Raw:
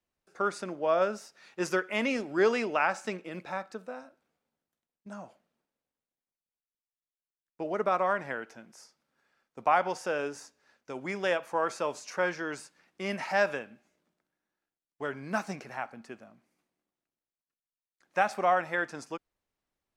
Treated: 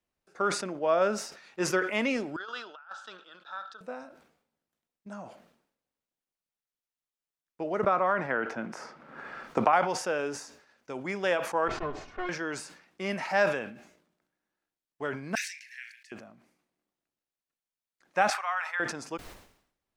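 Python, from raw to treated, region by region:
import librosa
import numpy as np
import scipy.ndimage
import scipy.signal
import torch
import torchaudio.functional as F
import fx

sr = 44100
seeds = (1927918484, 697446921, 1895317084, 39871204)

y = fx.chain(x, sr, fx.double_bandpass(hz=2200.0, octaves=1.3),
    fx.over_compress(threshold_db=-41.0, ratio=-0.5), at=(2.36, 3.81))
y = fx.chain(y, sr, fx.lowpass(hz=3300.0, slope=6),
    fx.peak_eq(hz=1300.0, db=3.5, octaves=0.42),
    fx.band_squash(depth_pct=100), at=(7.84, 9.73))
y = fx.chain(y, sr, fx.lower_of_two(delay_ms=2.8),
    fx.spacing_loss(db_at_10k=33), at=(11.68, 12.29))
y = fx.chain(y, sr, fx.steep_highpass(hz=1700.0, slope=96),
    fx.doubler(ms=35.0, db=-12.5), at=(15.35, 16.12))
y = fx.chain(y, sr, fx.cheby2_highpass(hz=240.0, order=4, stop_db=70),
    fx.tilt_eq(slope=-2.0), at=(18.3, 18.8))
y = fx.high_shelf(y, sr, hz=8000.0, db=-4.0)
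y = fx.sustainer(y, sr, db_per_s=86.0)
y = F.gain(torch.from_numpy(y), 1.0).numpy()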